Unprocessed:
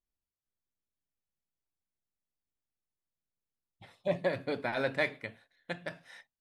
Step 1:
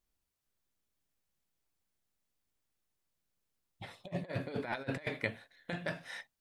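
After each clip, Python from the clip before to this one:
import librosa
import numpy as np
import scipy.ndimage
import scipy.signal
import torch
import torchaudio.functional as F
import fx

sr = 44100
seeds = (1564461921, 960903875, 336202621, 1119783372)

y = fx.over_compress(x, sr, threshold_db=-38.0, ratio=-0.5)
y = y * 10.0 ** (1.5 / 20.0)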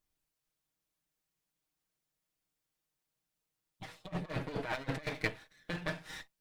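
y = fx.lower_of_two(x, sr, delay_ms=6.4)
y = y * 10.0 ** (1.0 / 20.0)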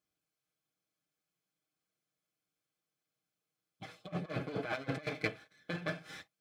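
y = scipy.signal.sosfilt(scipy.signal.butter(2, 75.0, 'highpass', fs=sr, output='sos'), x)
y = fx.high_shelf(y, sr, hz=6600.0, db=-7.0)
y = fx.notch_comb(y, sr, f0_hz=940.0)
y = y * 10.0 ** (1.0 / 20.0)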